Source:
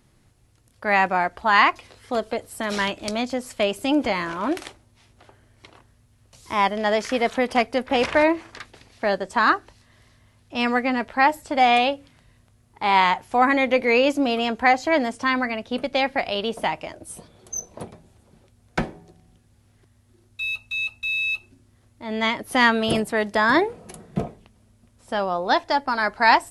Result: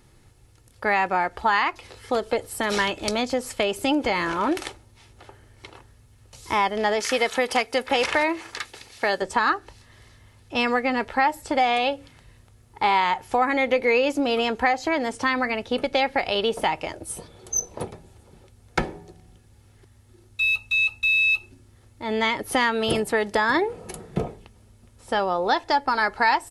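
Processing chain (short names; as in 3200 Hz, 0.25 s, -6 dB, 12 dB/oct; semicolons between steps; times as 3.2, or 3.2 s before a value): 7–9.22 tilt +2 dB/oct; compressor 4:1, threshold -23 dBFS, peak gain reduction 11 dB; comb 2.3 ms, depth 34%; gain +4 dB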